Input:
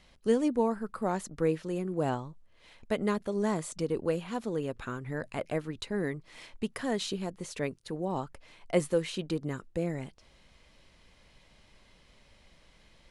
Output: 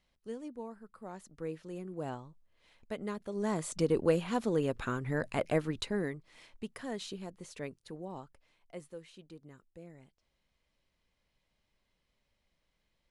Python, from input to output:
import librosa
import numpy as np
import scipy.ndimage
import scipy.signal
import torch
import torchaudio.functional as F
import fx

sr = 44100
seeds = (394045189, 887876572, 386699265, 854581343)

y = fx.gain(x, sr, db=fx.line((0.96, -16.0), (1.76, -9.0), (3.17, -9.0), (3.81, 2.5), (5.8, 2.5), (6.27, -8.0), (7.91, -8.0), (8.74, -19.0)))